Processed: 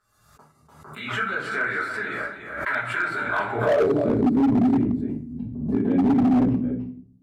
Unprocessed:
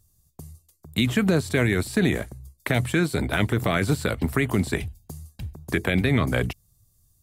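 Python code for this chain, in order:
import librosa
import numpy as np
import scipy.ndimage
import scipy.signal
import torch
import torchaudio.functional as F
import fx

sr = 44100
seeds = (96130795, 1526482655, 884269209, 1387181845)

p1 = fx.spec_quant(x, sr, step_db=15)
p2 = fx.over_compress(p1, sr, threshold_db=-25.0, ratio=-0.5)
p3 = p1 + (p2 * librosa.db_to_amplitude(2.0))
p4 = fx.filter_sweep_bandpass(p3, sr, from_hz=1400.0, to_hz=250.0, start_s=3.22, end_s=4.1, q=6.8)
p5 = p4 + 10.0 ** (-8.5 / 20.0) * np.pad(p4, (int(294 * sr / 1000.0), 0))[:len(p4)]
p6 = fx.room_shoebox(p5, sr, seeds[0], volume_m3=41.0, walls='mixed', distance_m=1.6)
p7 = np.clip(10.0 ** (15.5 / 20.0) * p6, -1.0, 1.0) / 10.0 ** (15.5 / 20.0)
y = fx.pre_swell(p7, sr, db_per_s=60.0)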